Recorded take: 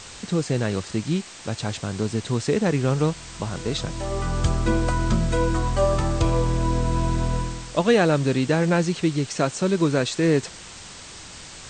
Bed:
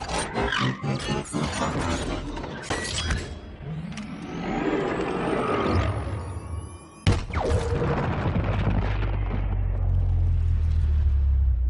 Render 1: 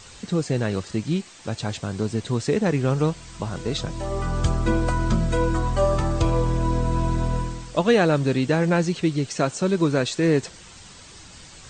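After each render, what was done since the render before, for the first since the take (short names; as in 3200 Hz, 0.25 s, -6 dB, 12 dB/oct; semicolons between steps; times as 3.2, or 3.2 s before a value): denoiser 7 dB, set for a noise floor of -41 dBFS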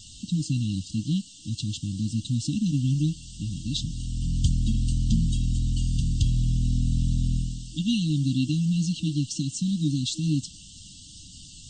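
FFT band-reject 320–2700 Hz; bell 430 Hz -4 dB 1.2 oct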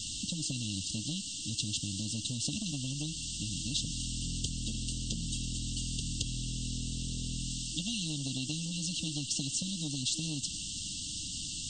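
compressor, threshold -25 dBFS, peak gain reduction 9 dB; spectral compressor 2:1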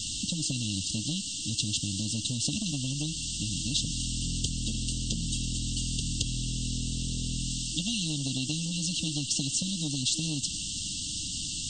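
gain +4.5 dB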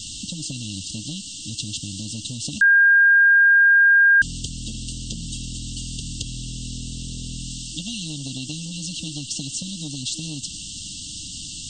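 2.61–4.22 bleep 1610 Hz -10.5 dBFS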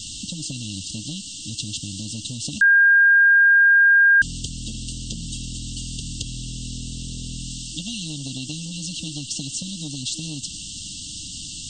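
nothing audible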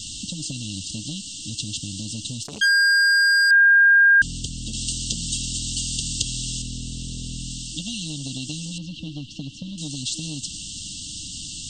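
2.42–3.51 core saturation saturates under 2700 Hz; 4.73–6.62 high shelf 2200 Hz +8.5 dB; 8.78–9.78 LPF 2500 Hz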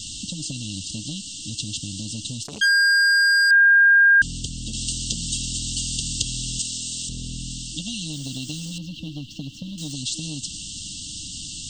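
6.59–7.09 tilt +3 dB/oct; 8.13–9.93 median filter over 3 samples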